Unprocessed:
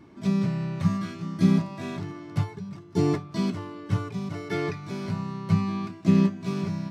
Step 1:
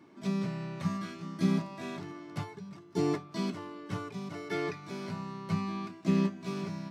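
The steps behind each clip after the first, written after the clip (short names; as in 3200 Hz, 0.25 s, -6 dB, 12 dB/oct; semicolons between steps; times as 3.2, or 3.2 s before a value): Bessel high-pass 230 Hz, order 2; gain -3.5 dB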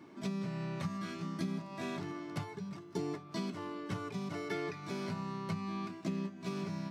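compressor 6:1, threshold -37 dBFS, peak gain reduction 14 dB; gain +2.5 dB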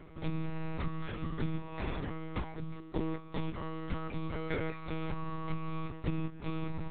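monotone LPC vocoder at 8 kHz 160 Hz; gain +3.5 dB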